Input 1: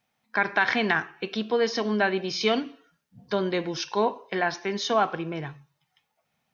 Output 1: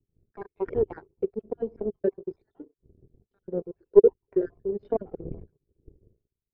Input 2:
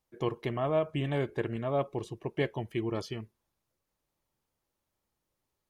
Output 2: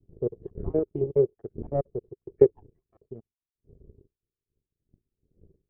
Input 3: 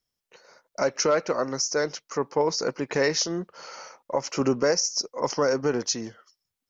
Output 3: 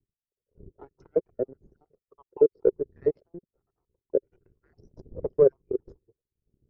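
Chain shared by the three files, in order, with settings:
time-frequency cells dropped at random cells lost 57%
wind on the microphone 120 Hz −46 dBFS
flanger 0.6 Hz, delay 1.2 ms, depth 1.1 ms, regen −5%
power curve on the samples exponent 2
low-pass with resonance 400 Hz, resonance Q 4.9
loudness normalisation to −27 LKFS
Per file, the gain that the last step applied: +12.0, +13.5, +7.5 decibels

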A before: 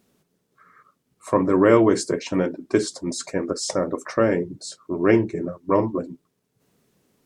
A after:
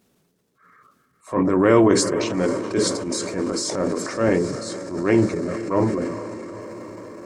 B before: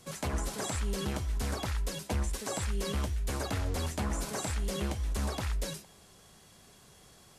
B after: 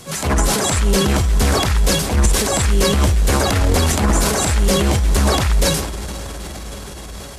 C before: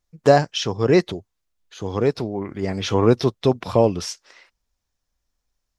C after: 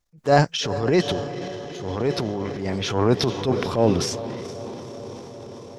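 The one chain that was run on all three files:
feedback delay with all-pass diffusion 457 ms, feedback 74%, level −15 dB
transient designer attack −9 dB, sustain +7 dB
normalise the peak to −3 dBFS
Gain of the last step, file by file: +1.0, +17.5, −1.0 decibels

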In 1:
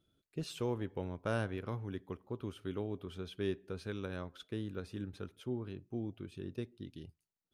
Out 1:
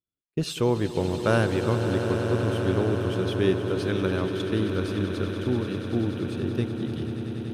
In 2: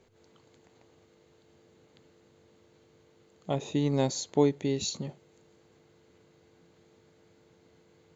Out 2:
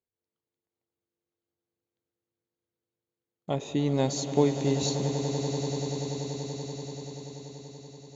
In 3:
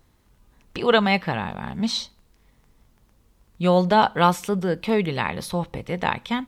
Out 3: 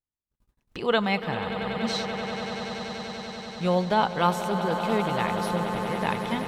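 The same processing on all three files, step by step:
noise gate −53 dBFS, range −33 dB
on a send: echo that builds up and dies away 96 ms, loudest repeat 8, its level −13 dB
on the sum: normalise the peak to −9 dBFS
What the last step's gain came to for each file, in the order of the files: +12.5, +0.5, −5.5 decibels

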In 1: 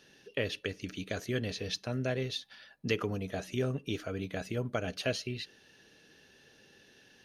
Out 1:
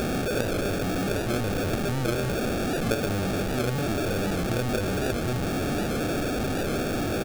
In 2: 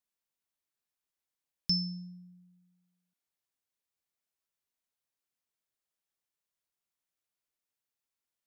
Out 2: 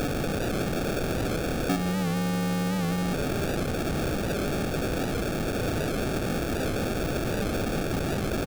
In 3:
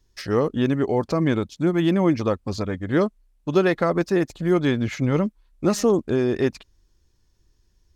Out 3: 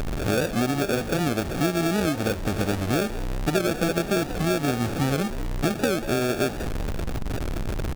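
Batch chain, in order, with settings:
linear delta modulator 32 kbit/s, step −25 dBFS
downward compressor, threshold −25 dBFS
sample-rate reduction 1,000 Hz, jitter 0%
on a send: echo with shifted repeats 189 ms, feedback 43%, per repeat +96 Hz, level −15 dB
on the sum: wow of a warped record 78 rpm, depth 100 cents
level +4.5 dB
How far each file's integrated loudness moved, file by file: +8.5, +5.0, −3.0 LU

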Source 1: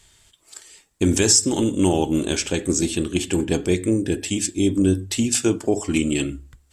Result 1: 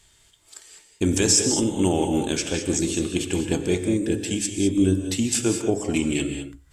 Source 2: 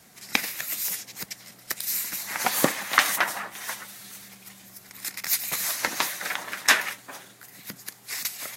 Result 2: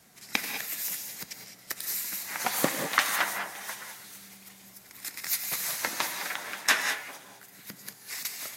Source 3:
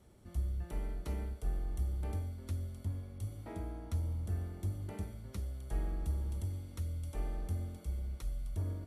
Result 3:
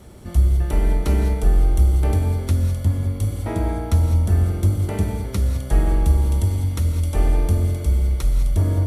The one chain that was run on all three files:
reverb whose tail is shaped and stops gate 230 ms rising, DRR 5.5 dB
normalise the peak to −6 dBFS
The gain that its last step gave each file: −3.0, −4.5, +18.5 decibels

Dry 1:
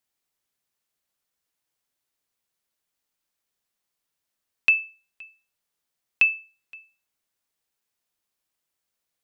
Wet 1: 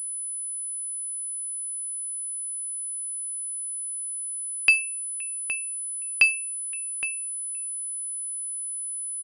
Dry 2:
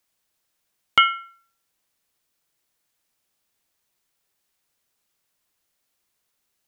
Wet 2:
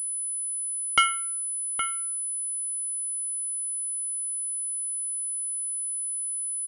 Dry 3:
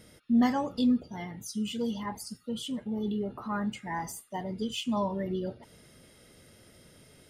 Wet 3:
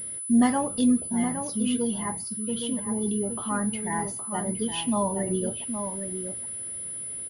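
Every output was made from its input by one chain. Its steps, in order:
slap from a distant wall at 140 metres, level −7 dB
switching amplifier with a slow clock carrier 10,000 Hz
loudness normalisation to −27 LKFS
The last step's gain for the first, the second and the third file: +1.5, −4.5, +3.5 decibels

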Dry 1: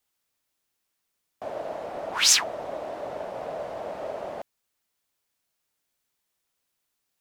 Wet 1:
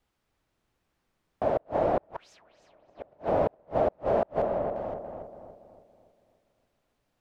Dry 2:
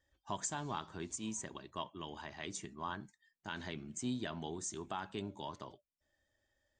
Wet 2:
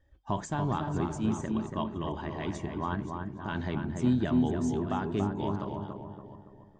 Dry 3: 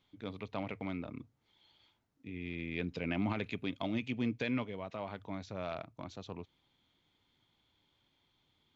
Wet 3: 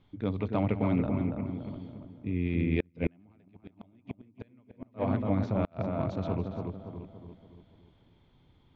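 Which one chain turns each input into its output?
delay that plays each chunk backwards 353 ms, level −11.5 dB
spectral tilt −2.5 dB per octave
feedback echo with a low-pass in the loop 284 ms, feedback 48%, low-pass 1,600 Hz, level −4 dB
gate with flip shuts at −21 dBFS, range −38 dB
high-shelf EQ 5,100 Hz −9.5 dB
level +7 dB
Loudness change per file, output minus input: −2.5, +11.0, +7.5 LU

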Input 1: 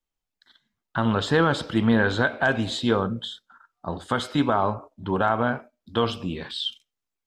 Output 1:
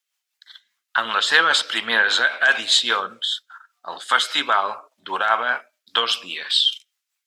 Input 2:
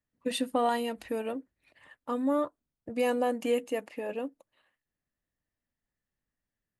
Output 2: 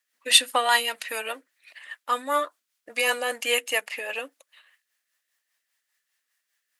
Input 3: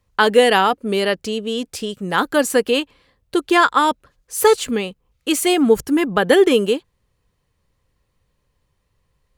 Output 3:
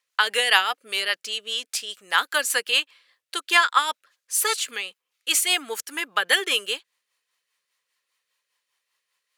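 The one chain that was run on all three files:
high-pass filter 1,500 Hz 12 dB per octave
rotating-speaker cabinet horn 5 Hz
normalise the peak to −2 dBFS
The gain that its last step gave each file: +15.5, +19.5, +4.5 decibels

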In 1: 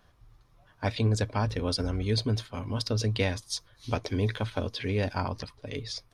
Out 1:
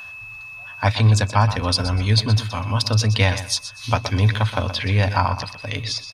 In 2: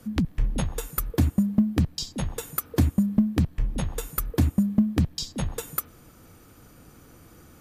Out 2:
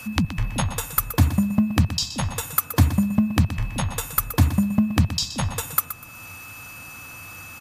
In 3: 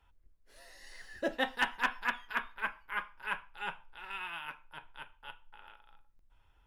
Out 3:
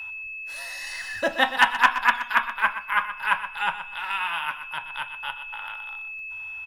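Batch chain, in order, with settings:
graphic EQ with 15 bands 100 Hz +12 dB, 400 Hz −11 dB, 1,000 Hz +5 dB
steady tone 2,600 Hz −53 dBFS
low-shelf EQ 200 Hz −12 dB
repeating echo 123 ms, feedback 21%, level −12 dB
one half of a high-frequency compander encoder only
normalise the peak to −3 dBFS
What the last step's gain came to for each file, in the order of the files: +11.0, +7.0, +12.0 decibels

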